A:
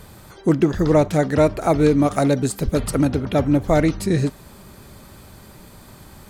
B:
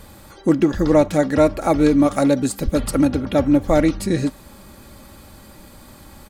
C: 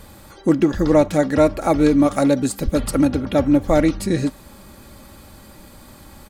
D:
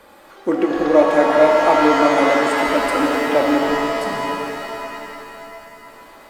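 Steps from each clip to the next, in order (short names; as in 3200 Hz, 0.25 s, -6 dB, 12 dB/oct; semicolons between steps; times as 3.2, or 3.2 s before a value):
comb 3.6 ms, depth 43%
nothing audible
spectral delete 3.58–5.87, 280–4300 Hz; three-band isolator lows -23 dB, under 320 Hz, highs -12 dB, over 3000 Hz; shimmer reverb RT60 3.3 s, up +7 st, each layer -2 dB, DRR 1 dB; gain +1.5 dB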